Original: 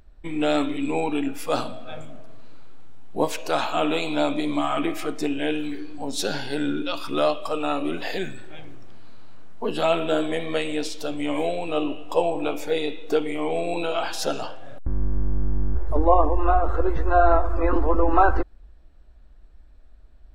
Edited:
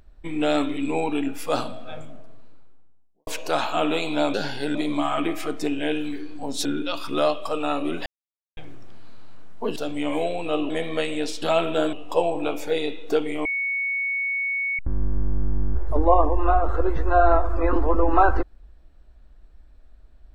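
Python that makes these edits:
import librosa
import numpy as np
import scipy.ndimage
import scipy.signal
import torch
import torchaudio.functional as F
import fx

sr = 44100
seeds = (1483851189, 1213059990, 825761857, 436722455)

y = fx.studio_fade_out(x, sr, start_s=1.78, length_s=1.49)
y = fx.edit(y, sr, fx.move(start_s=6.24, length_s=0.41, to_s=4.34),
    fx.silence(start_s=8.06, length_s=0.51),
    fx.swap(start_s=9.76, length_s=0.51, other_s=10.99, other_length_s=0.94),
    fx.bleep(start_s=13.45, length_s=1.34, hz=2220.0, db=-22.5), tone=tone)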